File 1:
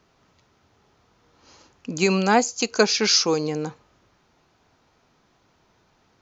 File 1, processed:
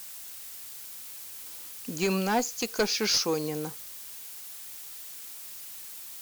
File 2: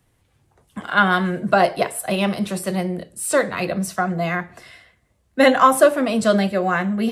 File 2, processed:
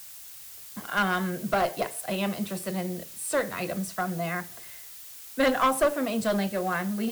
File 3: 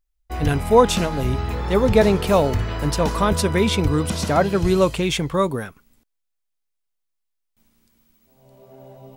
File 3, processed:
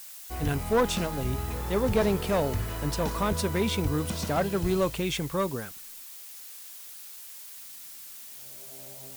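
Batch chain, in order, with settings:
added noise blue -36 dBFS; one-sided clip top -14 dBFS; peak normalisation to -12 dBFS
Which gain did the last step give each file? -6.0 dB, -8.0 dB, -8.0 dB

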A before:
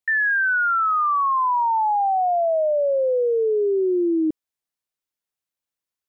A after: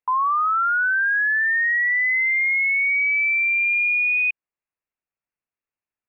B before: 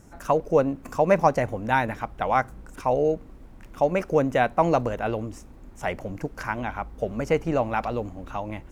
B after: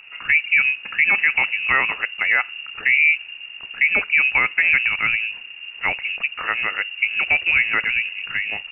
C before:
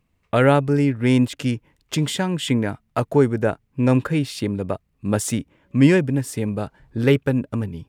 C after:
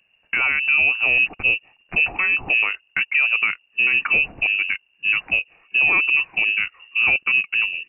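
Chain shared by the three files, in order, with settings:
frequency inversion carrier 2.8 kHz; peak limiter -13.5 dBFS; normalise loudness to -18 LUFS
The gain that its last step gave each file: 0.0 dB, +6.5 dB, +4.0 dB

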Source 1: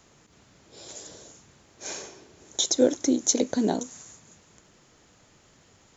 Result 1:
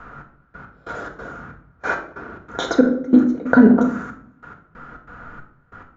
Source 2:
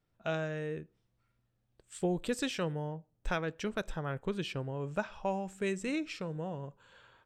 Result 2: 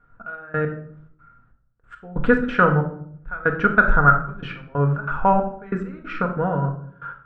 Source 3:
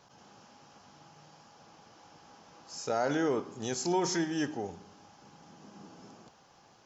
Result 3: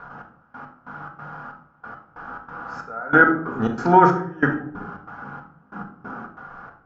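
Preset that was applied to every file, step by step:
bass shelf 71 Hz +10.5 dB; trance gate "xx...x..xx.x" 139 bpm -24 dB; resonant low-pass 1.4 kHz, resonance Q 10; simulated room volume 920 m³, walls furnished, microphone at 1.8 m; loudness maximiser +13 dB; peak normalisation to -2 dBFS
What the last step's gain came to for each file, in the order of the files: -1.0 dB, -1.0 dB, -1.0 dB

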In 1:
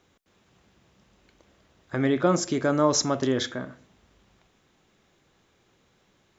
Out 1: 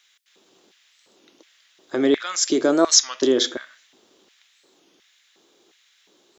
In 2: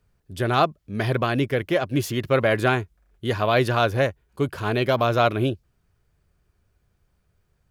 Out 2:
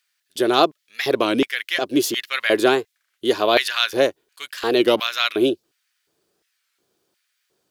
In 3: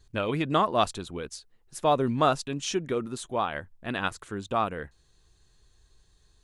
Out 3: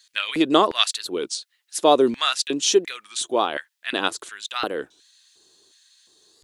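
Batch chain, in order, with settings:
LFO high-pass square 1.4 Hz 340–1900 Hz; resonant high shelf 2.8 kHz +6.5 dB, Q 1.5; warped record 33 1/3 rpm, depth 160 cents; peak normalisation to -1.5 dBFS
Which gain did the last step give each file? +2.0 dB, +1.5 dB, +4.5 dB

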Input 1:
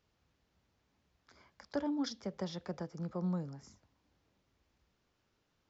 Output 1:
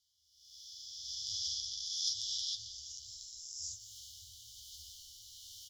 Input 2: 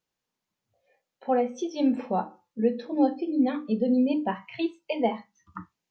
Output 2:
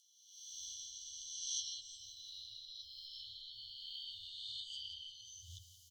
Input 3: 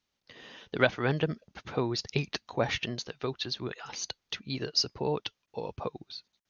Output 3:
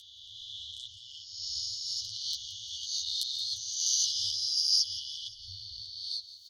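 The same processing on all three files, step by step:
reverse spectral sustain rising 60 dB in 2.55 s; recorder AGC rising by 25 dB/s; Chebyshev shaper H 2 -27 dB, 3 -12 dB, 4 -29 dB, 5 -22 dB, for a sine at -2 dBFS; tone controls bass -8 dB, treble +10 dB; rotary cabinet horn 1.2 Hz; FFT band-reject 110–2900 Hz; chorus voices 4, 0.79 Hz, delay 11 ms, depth 4.6 ms; on a send: feedback delay 174 ms, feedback 55%, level -14 dB; on the sum: tape noise reduction on one side only encoder only; trim -3.5 dB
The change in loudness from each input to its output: 0.0 LU, -18.5 LU, +2.0 LU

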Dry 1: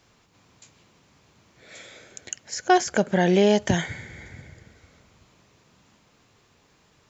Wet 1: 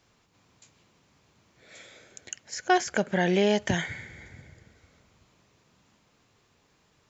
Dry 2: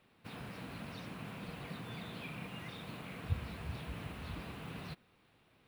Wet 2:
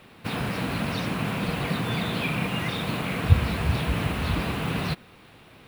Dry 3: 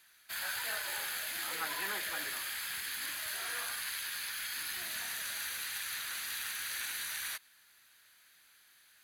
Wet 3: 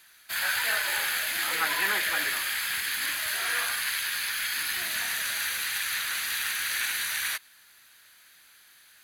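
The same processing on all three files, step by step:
dynamic bell 2.1 kHz, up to +5 dB, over -44 dBFS, Q 0.96; normalise loudness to -27 LUFS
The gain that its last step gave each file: -5.0 dB, +18.0 dB, +7.5 dB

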